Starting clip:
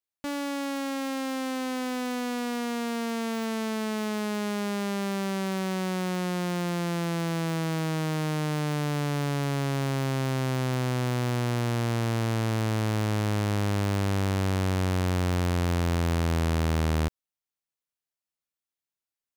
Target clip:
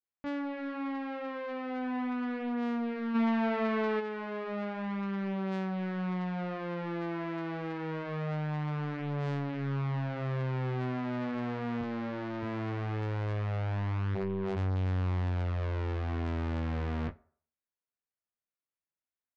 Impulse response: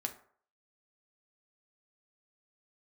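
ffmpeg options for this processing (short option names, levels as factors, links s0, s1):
-filter_complex "[0:a]lowpass=f=2300:w=0.5412,lowpass=f=2300:w=1.3066,flanger=delay=8.5:depth=4.7:regen=-50:speed=0.76:shape=triangular,asettb=1/sr,asplit=3[s0][s1][s2];[s0]atrim=end=11.814[s3];[s1]atrim=start=11.81:end=12.43,asetpts=PTS-STARTPTS,afade=t=in:d=0.004:c=qsin,afade=t=out:st=0.616:d=0.004:c=qsin,highpass=f=210:p=1[s4];[s2]atrim=start=12.426[s5];[s3][s4]acrossfade=d=0.004:c1=hsin:c2=qsin[s6];[s6][s5]acrossfade=d=0.004:c1=qsin:c2=hsin,asplit=3[s7][s8][s9];[s7]afade=t=out:st=14.14:d=0.02[s10];[s8]aeval=exprs='val(0)*sin(2*PI*290*n/s)':c=same,afade=t=in:st=14.14:d=0.02,afade=t=out:st=14.55:d=0.02[s11];[s9]afade=t=in:st=14.55:d=0.02[s12];[s10][s11][s12]amix=inputs=3:normalize=0,asplit=2[s13][s14];[s14]adelay=21,volume=0.596[s15];[s13][s15]amix=inputs=2:normalize=0,asoftclip=type=tanh:threshold=0.0447,asplit=3[s16][s17][s18];[s16]afade=t=out:st=3.14:d=0.02[s19];[s17]acontrast=85,afade=t=in:st=3.14:d=0.02,afade=t=out:st=3.99:d=0.02[s20];[s18]afade=t=in:st=3.99:d=0.02[s21];[s19][s20][s21]amix=inputs=3:normalize=0,asplit=2[s22][s23];[1:a]atrim=start_sample=2205,lowpass=8700,highshelf=f=5500:g=10.5[s24];[s23][s24]afir=irnorm=-1:irlink=0,volume=0.398[s25];[s22][s25]amix=inputs=2:normalize=0,volume=0.668"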